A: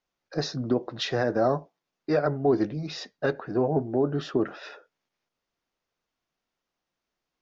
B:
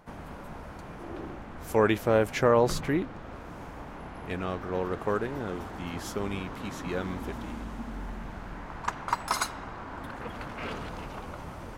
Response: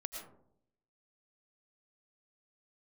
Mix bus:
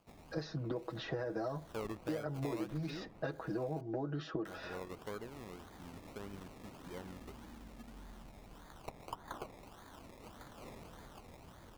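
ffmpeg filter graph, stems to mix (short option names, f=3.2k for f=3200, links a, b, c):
-filter_complex "[0:a]aecho=1:1:6.2:0.85,acompressor=threshold=-23dB:ratio=6,volume=-2.5dB[a];[1:a]acrusher=samples=23:mix=1:aa=0.000001:lfo=1:lforange=13.8:lforate=1.7,volume=-15dB,asplit=3[b][c][d];[b]atrim=end=3.81,asetpts=PTS-STARTPTS,afade=t=out:st=3.806:d=0.004:c=hsin[e];[c]atrim=start=3.81:end=4.45,asetpts=PTS-STARTPTS,volume=0[f];[d]atrim=start=4.45,asetpts=PTS-STARTPTS,afade=t=in:d=0.004:c=hsin[g];[e][f][g]concat=n=3:v=0:a=1[h];[a][h]amix=inputs=2:normalize=0,acrossover=split=1400|2900[i][j][k];[i]acompressor=threshold=-37dB:ratio=4[l];[j]acompressor=threshold=-56dB:ratio=4[m];[k]acompressor=threshold=-58dB:ratio=4[n];[l][m][n]amix=inputs=3:normalize=0"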